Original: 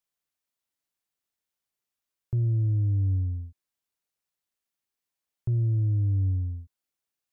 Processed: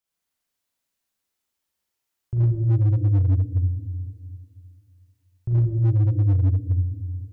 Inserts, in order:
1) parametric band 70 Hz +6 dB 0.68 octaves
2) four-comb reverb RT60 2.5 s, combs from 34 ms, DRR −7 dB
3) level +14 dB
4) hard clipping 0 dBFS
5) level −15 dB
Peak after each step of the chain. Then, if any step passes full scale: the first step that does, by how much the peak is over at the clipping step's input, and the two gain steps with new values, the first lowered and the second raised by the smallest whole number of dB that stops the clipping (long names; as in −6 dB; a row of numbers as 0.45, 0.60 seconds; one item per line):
−18.5, −8.0, +6.0, 0.0, −15.0 dBFS
step 3, 6.0 dB
step 3 +8 dB, step 5 −9 dB